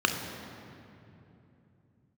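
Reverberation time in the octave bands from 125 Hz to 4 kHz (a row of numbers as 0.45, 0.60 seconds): 4.3, 4.1, 3.2, 2.7, 2.4, 1.8 seconds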